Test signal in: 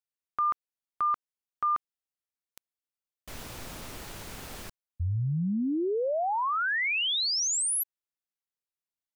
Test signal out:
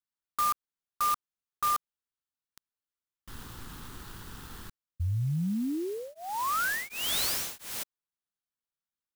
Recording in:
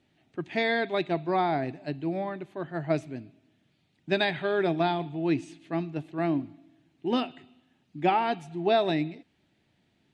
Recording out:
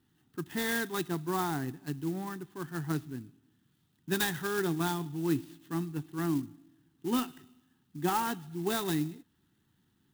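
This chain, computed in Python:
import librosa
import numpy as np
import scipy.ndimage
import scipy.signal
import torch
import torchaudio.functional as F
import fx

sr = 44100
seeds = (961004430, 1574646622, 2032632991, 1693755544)

y = fx.fixed_phaser(x, sr, hz=2300.0, stages=6)
y = fx.clock_jitter(y, sr, seeds[0], jitter_ms=0.047)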